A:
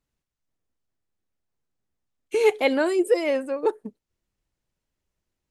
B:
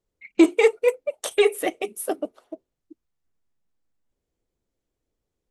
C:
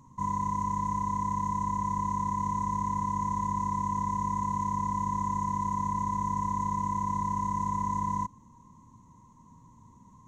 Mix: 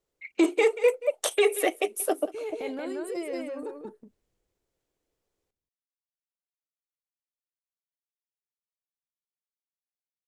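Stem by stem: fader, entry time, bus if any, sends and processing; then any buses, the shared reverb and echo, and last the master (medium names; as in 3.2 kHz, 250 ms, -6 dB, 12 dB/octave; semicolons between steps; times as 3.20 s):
-13.5 dB, 0.00 s, bus A, no send, echo send -5.5 dB, bass shelf 350 Hz +6.5 dB; transient shaper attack -5 dB, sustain +9 dB
+2.0 dB, 0.00 s, no bus, no send, echo send -20 dB, high-pass 310 Hz 24 dB/octave
mute
bus A: 0.0 dB, vibrato 1.7 Hz 16 cents; compression 3:1, threshold -33 dBFS, peak gain reduction 5.5 dB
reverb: none
echo: delay 181 ms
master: peak limiter -12.5 dBFS, peak gain reduction 8.5 dB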